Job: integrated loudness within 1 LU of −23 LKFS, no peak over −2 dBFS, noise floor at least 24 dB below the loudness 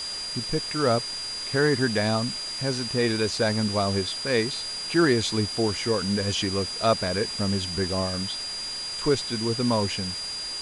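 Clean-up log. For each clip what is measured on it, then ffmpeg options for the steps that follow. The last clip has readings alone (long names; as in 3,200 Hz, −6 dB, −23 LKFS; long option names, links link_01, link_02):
interfering tone 4,800 Hz; level of the tone −31 dBFS; background noise floor −33 dBFS; target noise floor −50 dBFS; integrated loudness −25.5 LKFS; sample peak −9.5 dBFS; target loudness −23.0 LKFS
→ -af "bandreject=frequency=4800:width=30"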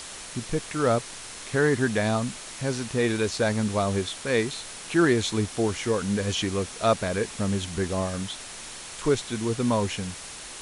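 interfering tone none found; background noise floor −40 dBFS; target noise floor −51 dBFS
→ -af "afftdn=noise_reduction=11:noise_floor=-40"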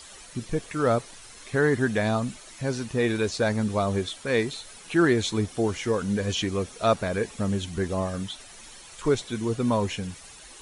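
background noise floor −47 dBFS; target noise floor −51 dBFS
→ -af "afftdn=noise_reduction=6:noise_floor=-47"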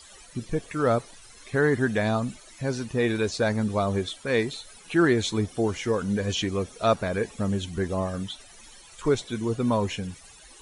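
background noise floor −50 dBFS; target noise floor −51 dBFS
→ -af "afftdn=noise_reduction=6:noise_floor=-50"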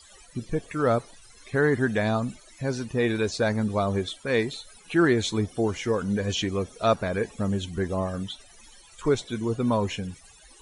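background noise floor −53 dBFS; integrated loudness −26.5 LKFS; sample peak −10.0 dBFS; target loudness −23.0 LKFS
→ -af "volume=3.5dB"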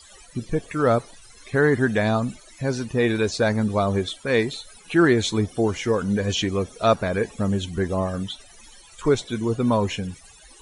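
integrated loudness −23.0 LKFS; sample peak −6.5 dBFS; background noise floor −49 dBFS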